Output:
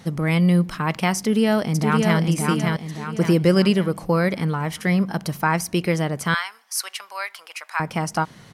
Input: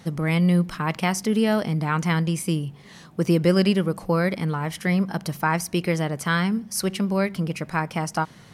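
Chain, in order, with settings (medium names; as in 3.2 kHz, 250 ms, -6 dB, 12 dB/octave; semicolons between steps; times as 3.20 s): 1.17–2.19 s: echo throw 570 ms, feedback 45%, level -3 dB; 6.34–7.80 s: high-pass 880 Hz 24 dB/octave; trim +2 dB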